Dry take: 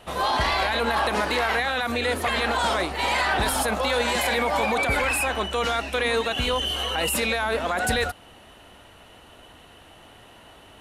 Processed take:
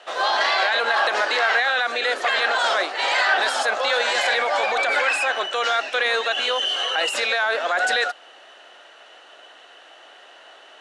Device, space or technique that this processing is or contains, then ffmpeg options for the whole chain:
phone speaker on a table: -af "highpass=f=440:w=0.5412,highpass=f=440:w=1.3066,equalizer=f=460:t=q:w=4:g=-4,equalizer=f=960:t=q:w=4:g=-6,equalizer=f=1.6k:t=q:w=4:g=4,equalizer=f=2.3k:t=q:w=4:g=-3,lowpass=f=7k:w=0.5412,lowpass=f=7k:w=1.3066,volume=4.5dB"

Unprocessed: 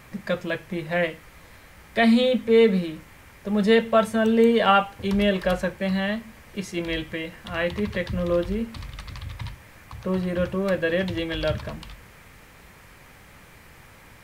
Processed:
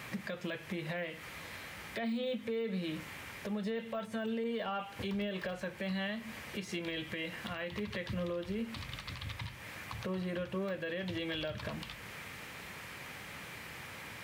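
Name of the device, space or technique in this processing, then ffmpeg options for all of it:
broadcast voice chain: -af "highpass=100,deesser=1,acompressor=threshold=-30dB:ratio=4,equalizer=f=3k:t=o:w=1.7:g=5.5,alimiter=level_in=6dB:limit=-24dB:level=0:latency=1:release=220,volume=-6dB,volume=1dB"

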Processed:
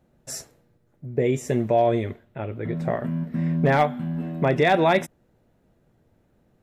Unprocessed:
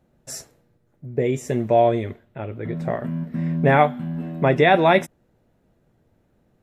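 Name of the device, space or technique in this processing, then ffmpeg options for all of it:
clipper into limiter: -af "asoftclip=type=hard:threshold=-7dB,alimiter=limit=-10.5dB:level=0:latency=1:release=82"

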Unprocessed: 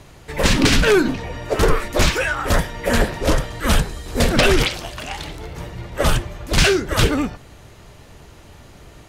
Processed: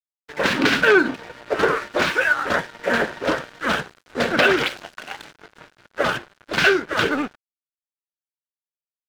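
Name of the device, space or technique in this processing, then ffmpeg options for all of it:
pocket radio on a weak battery: -af "highpass=250,lowpass=3.6k,aeval=exprs='sgn(val(0))*max(abs(val(0))-0.02,0)':c=same,equalizer=f=1.5k:t=o:w=0.32:g=8"

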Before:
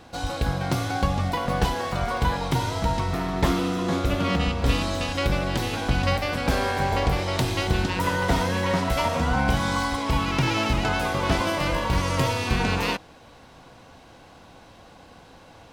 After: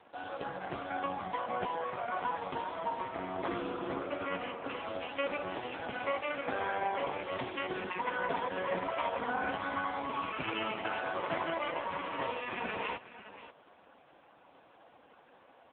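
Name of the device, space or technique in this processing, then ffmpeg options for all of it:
satellite phone: -filter_complex "[0:a]asettb=1/sr,asplit=3[a][b][c];[a]atrim=end=3.944[d];[b]atrim=start=3.94:end=4.86,asetpts=PTS-STARTPTS,afade=t=in:d=0.004:c=qsin,afade=t=out:st=0.916:d=0.004:c=qsin,bass=f=250:g=-7,treble=f=4k:g=-14[e];[c]atrim=start=4.856[f];[d][e]acrossfade=d=0.004:c1=hsin:c2=qsin[g];[g][f]acrossfade=d=0.004:c1=qsin:c2=hsin,highpass=320,lowpass=3.3k,aecho=1:1:536:0.178,volume=-5dB" -ar 8000 -c:a libopencore_amrnb -b:a 4750

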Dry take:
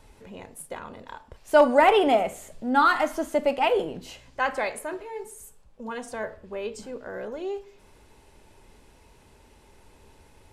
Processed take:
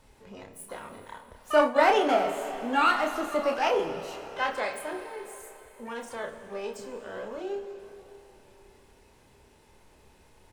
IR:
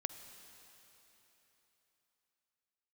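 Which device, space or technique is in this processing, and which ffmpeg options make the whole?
shimmer-style reverb: -filter_complex "[0:a]lowshelf=f=77:g=-4,asplit=2[a][b];[b]adelay=30,volume=-5dB[c];[a][c]amix=inputs=2:normalize=0,asplit=2[d][e];[e]asetrate=88200,aresample=44100,atempo=0.5,volume=-12dB[f];[d][f]amix=inputs=2:normalize=0[g];[1:a]atrim=start_sample=2205[h];[g][h]afir=irnorm=-1:irlink=0,asplit=3[i][j][k];[i]afade=t=out:st=1.65:d=0.02[l];[j]agate=range=-33dB:threshold=-16dB:ratio=3:detection=peak,afade=t=in:st=1.65:d=0.02,afade=t=out:st=2.07:d=0.02[m];[k]afade=t=in:st=2.07:d=0.02[n];[l][m][n]amix=inputs=3:normalize=0,volume=-3.5dB"

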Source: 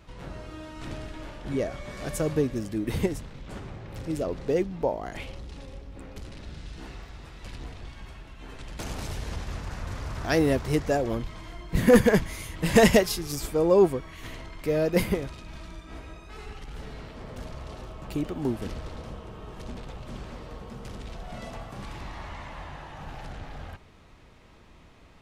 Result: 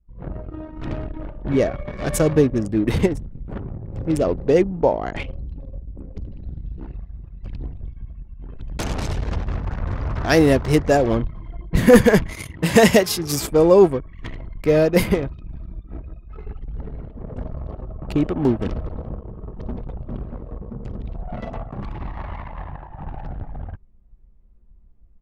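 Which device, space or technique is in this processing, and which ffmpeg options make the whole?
voice memo with heavy noise removal: -filter_complex "[0:a]asettb=1/sr,asplit=3[a][b][c];[a]atrim=end=12.324[d];[b]atrim=start=12.32:end=13.51,asetpts=PTS-STARTPTS,afade=t=in:d=0.004:c=qsin,afade=t=out:st=1.186:d=0.004:c=qsin,highpass=84[e];[c]atrim=start=13.506[f];[d][e]acrossfade=d=0.004:c1=hsin:c2=qsin[g];[g][f]acrossfade=d=0.004:c1=qsin:c2=hsin,anlmdn=1.58,dynaudnorm=f=100:g=3:m=11dB,volume=-1dB"

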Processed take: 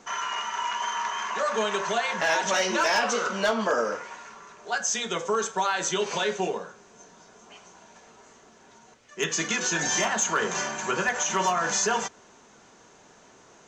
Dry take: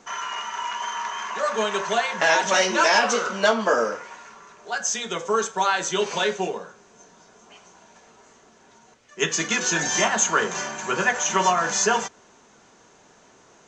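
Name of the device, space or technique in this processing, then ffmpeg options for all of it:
clipper into limiter: -af "asoftclip=type=hard:threshold=-11dB,alimiter=limit=-16dB:level=0:latency=1:release=117"

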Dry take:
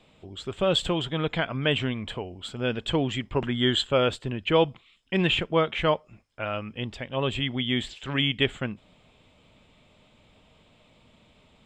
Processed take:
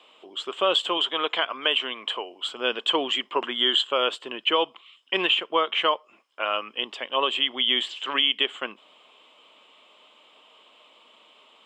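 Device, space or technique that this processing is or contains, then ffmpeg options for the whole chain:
laptop speaker: -filter_complex "[0:a]asettb=1/sr,asplit=3[a][b][c];[a]atrim=end=0.974[d];[b]atrim=start=0.97:end=2.51,asetpts=PTS-STARTPTS,afade=t=in:d=0.004:c=qsin,afade=t=out:st=1.536:d=0.004:c=qsin,highpass=f=280:p=1[e];[c]atrim=start=2.506[f];[d][e]acrossfade=d=0.004:c1=hsin:c2=qsin[g];[g][f]acrossfade=d=0.004:c1=qsin:c2=hsin,highpass=f=330:w=0.5412,highpass=f=330:w=1.3066,equalizer=f=1.1k:t=o:w=0.53:g=10.5,equalizer=f=3k:t=o:w=0.35:g=11.5,alimiter=limit=-11.5dB:level=0:latency=1:release=297,volume=1dB"

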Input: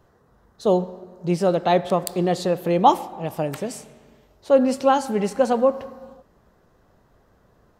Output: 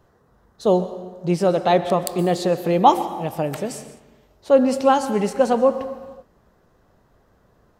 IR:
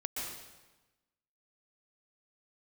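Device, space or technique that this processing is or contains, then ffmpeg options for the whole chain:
keyed gated reverb: -filter_complex "[0:a]asplit=3[a][b][c];[1:a]atrim=start_sample=2205[d];[b][d]afir=irnorm=-1:irlink=0[e];[c]apad=whole_len=343756[f];[e][f]sidechaingate=range=-33dB:threshold=-47dB:ratio=16:detection=peak,volume=-12.5dB[g];[a][g]amix=inputs=2:normalize=0"

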